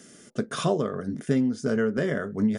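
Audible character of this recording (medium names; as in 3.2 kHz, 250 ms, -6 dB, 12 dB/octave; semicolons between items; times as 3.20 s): noise floor -52 dBFS; spectral tilt -6.0 dB/octave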